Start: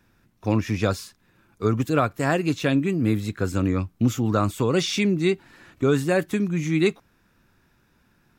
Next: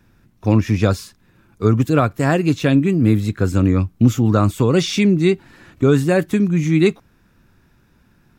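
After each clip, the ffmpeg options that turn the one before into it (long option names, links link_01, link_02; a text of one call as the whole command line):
ffmpeg -i in.wav -af "lowshelf=frequency=310:gain=6.5,volume=3dB" out.wav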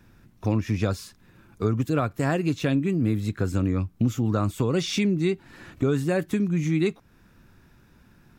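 ffmpeg -i in.wav -af "acompressor=threshold=-27dB:ratio=2" out.wav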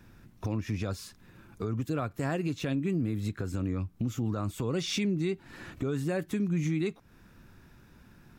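ffmpeg -i in.wav -af "alimiter=limit=-22dB:level=0:latency=1:release=260" out.wav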